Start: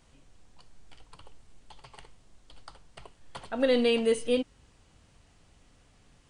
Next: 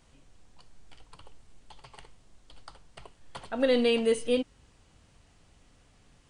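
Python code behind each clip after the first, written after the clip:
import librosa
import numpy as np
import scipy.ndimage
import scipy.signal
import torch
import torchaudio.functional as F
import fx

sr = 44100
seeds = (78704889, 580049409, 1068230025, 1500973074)

y = x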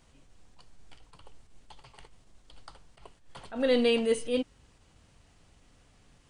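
y = fx.attack_slew(x, sr, db_per_s=140.0)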